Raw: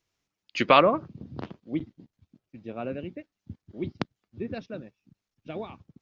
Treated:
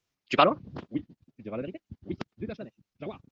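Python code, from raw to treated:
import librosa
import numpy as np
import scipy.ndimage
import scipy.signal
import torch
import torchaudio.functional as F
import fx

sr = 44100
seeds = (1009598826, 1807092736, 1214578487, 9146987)

y = fx.stretch_vocoder(x, sr, factor=0.55)
y = fx.wow_flutter(y, sr, seeds[0], rate_hz=2.1, depth_cents=120.0)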